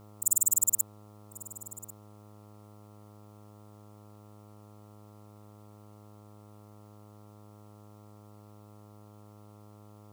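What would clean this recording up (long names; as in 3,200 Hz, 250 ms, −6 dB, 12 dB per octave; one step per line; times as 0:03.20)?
hum removal 104.5 Hz, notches 13
downward expander −45 dBFS, range −21 dB
echo removal 1,094 ms −19 dB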